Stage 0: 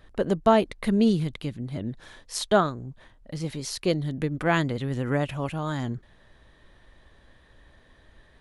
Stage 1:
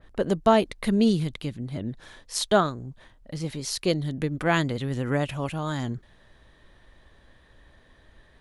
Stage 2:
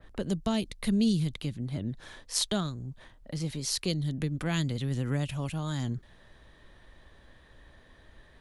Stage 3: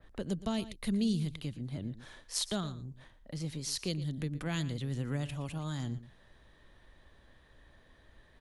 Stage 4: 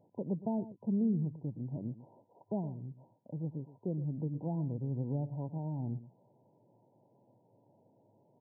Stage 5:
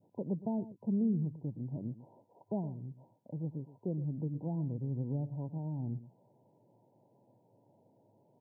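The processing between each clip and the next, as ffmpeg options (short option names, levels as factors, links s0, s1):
-af "adynamicequalizer=threshold=0.01:dfrequency=2900:dqfactor=0.7:tfrequency=2900:tqfactor=0.7:attack=5:release=100:ratio=0.375:range=2:mode=boostabove:tftype=highshelf"
-filter_complex "[0:a]acrossover=split=220|3000[s0][s1][s2];[s1]acompressor=threshold=0.00891:ratio=2.5[s3];[s0][s3][s2]amix=inputs=3:normalize=0"
-filter_complex "[0:a]asplit=2[s0][s1];[s1]adelay=116.6,volume=0.178,highshelf=f=4000:g=-2.62[s2];[s0][s2]amix=inputs=2:normalize=0,volume=0.562"
-af "afftfilt=real='re*between(b*sr/4096,100,1000)':imag='im*between(b*sr/4096,100,1000)':win_size=4096:overlap=0.75"
-af "adynamicequalizer=threshold=0.00282:dfrequency=790:dqfactor=0.89:tfrequency=790:tqfactor=0.89:attack=5:release=100:ratio=0.375:range=2.5:mode=cutabove:tftype=bell"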